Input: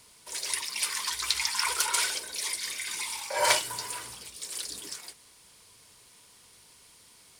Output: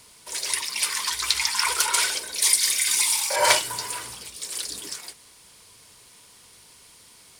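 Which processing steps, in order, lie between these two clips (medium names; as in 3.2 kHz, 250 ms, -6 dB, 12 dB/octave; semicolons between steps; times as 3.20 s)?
2.42–3.36 s: treble shelf 3.8 kHz +11.5 dB; trim +5 dB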